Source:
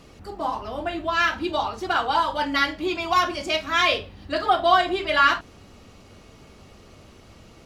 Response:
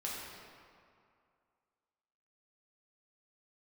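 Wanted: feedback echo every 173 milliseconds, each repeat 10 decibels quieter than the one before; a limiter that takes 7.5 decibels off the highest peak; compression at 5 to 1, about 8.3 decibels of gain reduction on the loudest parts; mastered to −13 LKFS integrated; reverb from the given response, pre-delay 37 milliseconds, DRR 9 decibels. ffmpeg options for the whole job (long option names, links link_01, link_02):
-filter_complex "[0:a]acompressor=threshold=-22dB:ratio=5,alimiter=limit=-20.5dB:level=0:latency=1,aecho=1:1:173|346|519|692:0.316|0.101|0.0324|0.0104,asplit=2[link_01][link_02];[1:a]atrim=start_sample=2205,adelay=37[link_03];[link_02][link_03]afir=irnorm=-1:irlink=0,volume=-11dB[link_04];[link_01][link_04]amix=inputs=2:normalize=0,volume=16dB"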